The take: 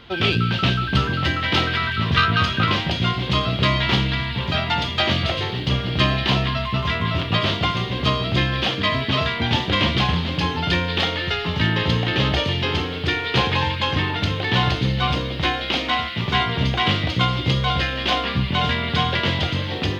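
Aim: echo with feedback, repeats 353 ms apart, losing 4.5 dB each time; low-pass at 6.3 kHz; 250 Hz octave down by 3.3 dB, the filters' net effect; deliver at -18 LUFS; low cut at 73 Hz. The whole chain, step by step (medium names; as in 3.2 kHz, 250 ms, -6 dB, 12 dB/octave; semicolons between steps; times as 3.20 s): high-pass 73 Hz; low-pass 6.3 kHz; peaking EQ 250 Hz -5 dB; feedback delay 353 ms, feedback 60%, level -4.5 dB; trim +1.5 dB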